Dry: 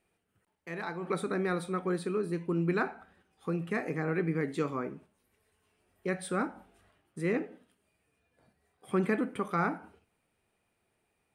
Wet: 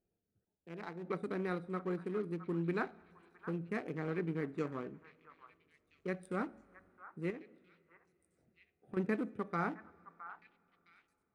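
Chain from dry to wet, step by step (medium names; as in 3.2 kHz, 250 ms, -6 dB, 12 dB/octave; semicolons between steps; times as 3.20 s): local Wiener filter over 41 samples; 7.30–8.97 s: compression 6:1, threshold -39 dBFS, peak gain reduction 13 dB; repeats whose band climbs or falls 664 ms, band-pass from 1.2 kHz, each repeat 1.4 oct, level -10.5 dB; two-slope reverb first 0.34 s, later 3.8 s, from -18 dB, DRR 17 dB; trim -5.5 dB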